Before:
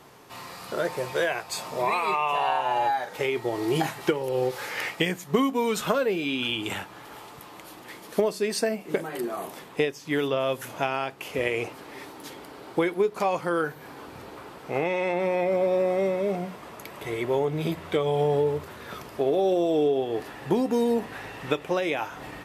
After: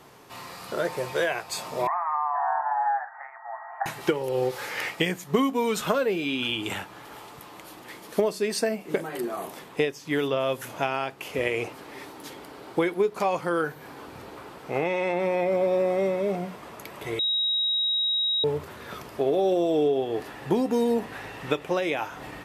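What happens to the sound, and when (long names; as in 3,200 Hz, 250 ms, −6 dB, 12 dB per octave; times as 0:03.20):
0:01.87–0:03.86: Chebyshev band-pass filter 680–1,900 Hz, order 5
0:17.19–0:18.44: beep over 3,810 Hz −22 dBFS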